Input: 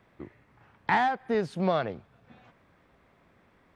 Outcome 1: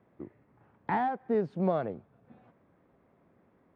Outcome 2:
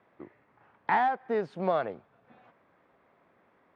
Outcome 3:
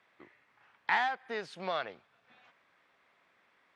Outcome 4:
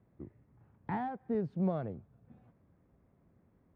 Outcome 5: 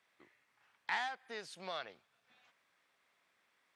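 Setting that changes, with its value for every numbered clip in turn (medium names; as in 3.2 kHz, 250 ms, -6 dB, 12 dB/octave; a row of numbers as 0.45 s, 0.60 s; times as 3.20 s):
band-pass filter, frequency: 290 Hz, 750 Hz, 3 kHz, 100 Hz, 7.9 kHz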